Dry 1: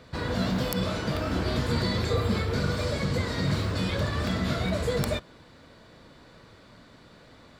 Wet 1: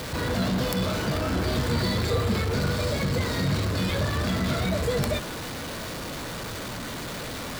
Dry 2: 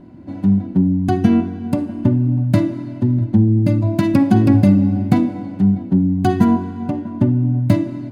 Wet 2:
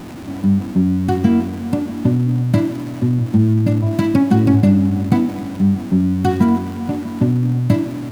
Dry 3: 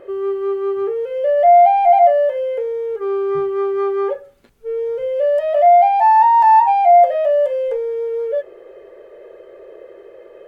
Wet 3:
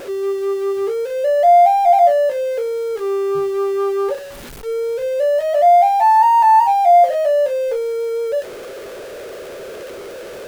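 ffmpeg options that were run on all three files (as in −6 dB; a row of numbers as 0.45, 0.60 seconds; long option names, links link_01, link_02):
-af "aeval=exprs='val(0)+0.5*0.0398*sgn(val(0))':channel_layout=same,volume=-1dB"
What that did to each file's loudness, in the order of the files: +1.0, −0.5, −0.5 LU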